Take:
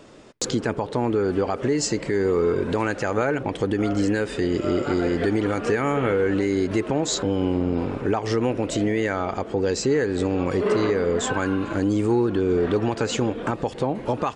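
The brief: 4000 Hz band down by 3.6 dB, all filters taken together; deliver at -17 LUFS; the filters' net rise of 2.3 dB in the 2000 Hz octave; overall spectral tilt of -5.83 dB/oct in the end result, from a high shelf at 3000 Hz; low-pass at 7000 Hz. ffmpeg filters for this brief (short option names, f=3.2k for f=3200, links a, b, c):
-af "lowpass=7k,equalizer=f=2k:t=o:g=3.5,highshelf=f=3k:g=4,equalizer=f=4k:t=o:g=-8.5,volume=6.5dB"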